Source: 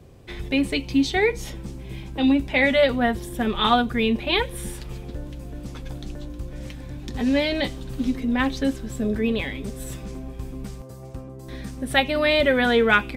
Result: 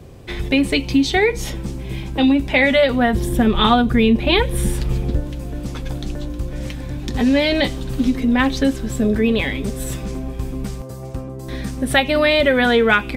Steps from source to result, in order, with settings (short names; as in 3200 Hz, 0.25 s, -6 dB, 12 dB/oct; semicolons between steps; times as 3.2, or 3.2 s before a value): 3.13–5.2 low shelf 380 Hz +7.5 dB; compressor 2.5:1, threshold -21 dBFS, peak gain reduction 7 dB; gain +8 dB